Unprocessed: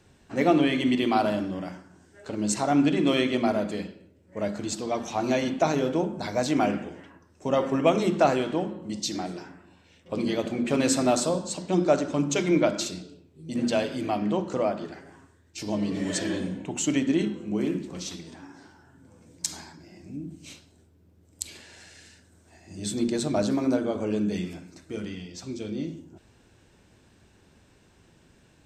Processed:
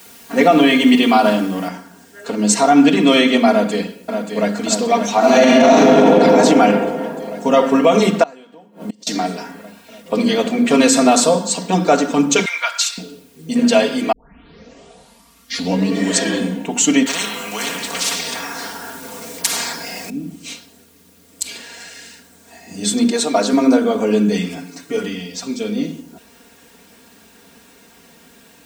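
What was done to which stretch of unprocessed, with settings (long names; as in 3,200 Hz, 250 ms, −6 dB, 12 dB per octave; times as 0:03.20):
0:01.68: noise floor change −57 dB −67 dB
0:03.50–0:04.59: delay throw 580 ms, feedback 80%, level −7 dB
0:05.18–0:06.09: thrown reverb, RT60 2.8 s, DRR −8.5 dB
0:08.23–0:09.07: gate with flip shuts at −23 dBFS, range −27 dB
0:12.45–0:12.98: high-pass filter 1,100 Hz 24 dB per octave
0:14.12: tape start 1.81 s
0:17.06–0:20.10: every bin compressed towards the loudest bin 4 to 1
0:23.11–0:23.53: high-pass filter 330 Hz
0:24.56–0:25.08: comb filter 7 ms
whole clip: high-pass filter 290 Hz 6 dB per octave; comb filter 4.3 ms, depth 93%; boost into a limiter +12 dB; level −1 dB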